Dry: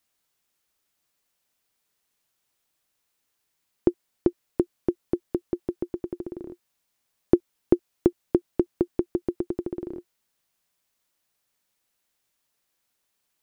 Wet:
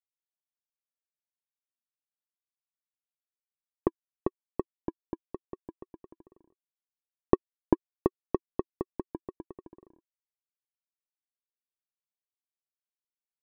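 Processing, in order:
power curve on the samples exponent 2
pitch modulation by a square or saw wave square 4 Hz, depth 100 cents

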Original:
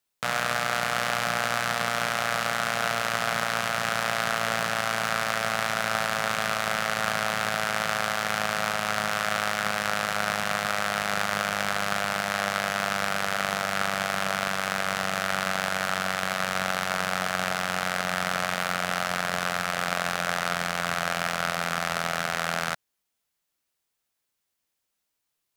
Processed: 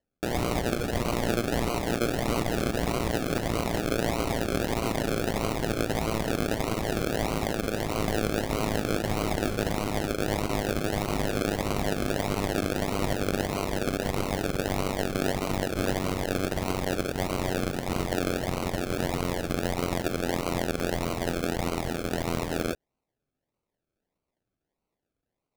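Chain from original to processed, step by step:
high-pass filter 410 Hz 24 dB per octave
soft clipping −19 dBFS, distortion −11 dB
high shelf with overshoot 2,600 Hz −9.5 dB, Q 3
sample-and-hold swept by an LFO 36×, swing 60% 1.6 Hz
regular buffer underruns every 0.13 s, samples 128, zero, from 0:00.65

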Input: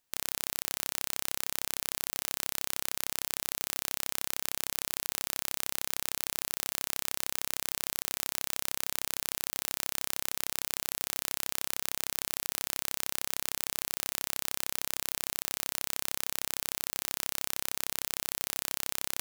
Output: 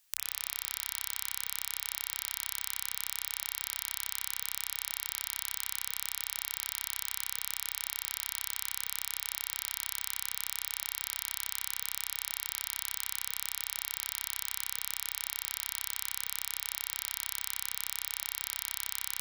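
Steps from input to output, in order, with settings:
guitar amp tone stack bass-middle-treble 10-0-10
spring reverb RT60 2.6 s, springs 44/48/59 ms, chirp 65 ms, DRR −0.5 dB
multiband upward and downward compressor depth 40%
level −1.5 dB

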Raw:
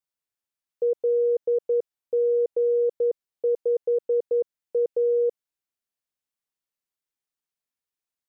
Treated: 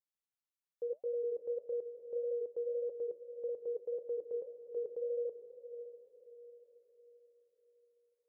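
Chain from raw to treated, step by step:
brickwall limiter −23 dBFS, peak gain reduction 5 dB
flanger 1.7 Hz, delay 1.8 ms, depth 7.8 ms, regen −70%
feedback delay with all-pass diffusion 557 ms, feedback 44%, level −11 dB
level −5.5 dB

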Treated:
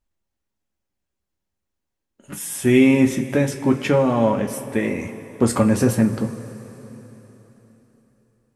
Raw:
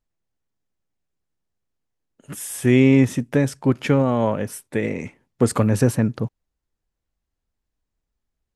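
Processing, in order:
coupled-rooms reverb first 0.2 s, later 3.9 s, from −20 dB, DRR 2 dB

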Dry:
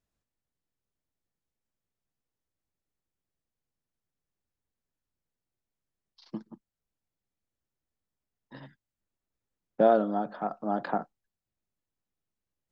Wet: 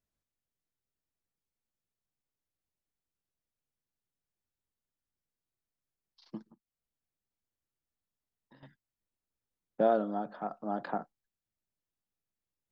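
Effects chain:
0:06.49–0:08.63: downward compressor 6 to 1, threshold −54 dBFS, peak gain reduction 12 dB
level −5 dB

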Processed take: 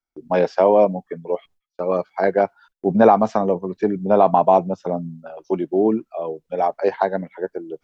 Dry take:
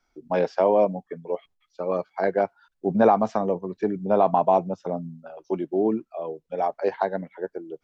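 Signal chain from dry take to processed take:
noise gate −54 dBFS, range −24 dB
level +5 dB

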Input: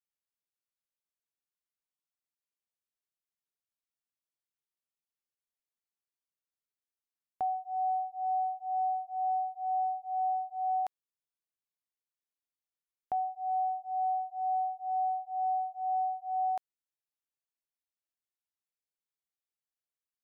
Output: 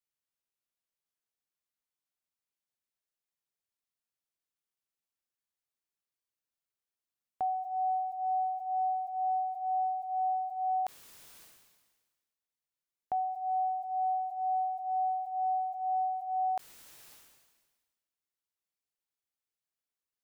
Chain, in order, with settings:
level that may fall only so fast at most 41 dB per second

